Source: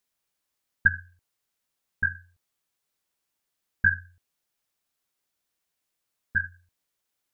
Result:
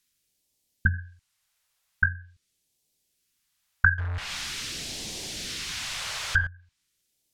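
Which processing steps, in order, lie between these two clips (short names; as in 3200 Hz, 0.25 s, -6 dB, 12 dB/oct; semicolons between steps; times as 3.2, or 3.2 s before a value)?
3.98–6.47 zero-crossing step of -29 dBFS; phaser stages 2, 0.44 Hz, lowest notch 270–1300 Hz; treble ducked by the level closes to 1000 Hz, closed at -26 dBFS; gain +8 dB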